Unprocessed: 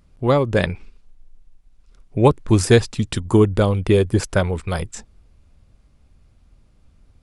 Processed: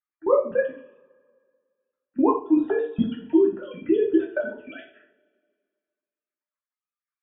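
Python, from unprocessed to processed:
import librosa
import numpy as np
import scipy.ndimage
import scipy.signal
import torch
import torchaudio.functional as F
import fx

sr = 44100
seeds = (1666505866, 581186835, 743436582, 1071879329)

y = fx.sine_speech(x, sr)
y = fx.noise_reduce_blind(y, sr, reduce_db=15)
y = fx.level_steps(y, sr, step_db=20)
y = fx.env_phaser(y, sr, low_hz=570.0, high_hz=2200.0, full_db=-27.5)
y = fx.rev_double_slope(y, sr, seeds[0], early_s=0.41, late_s=1.9, knee_db=-25, drr_db=-3.0)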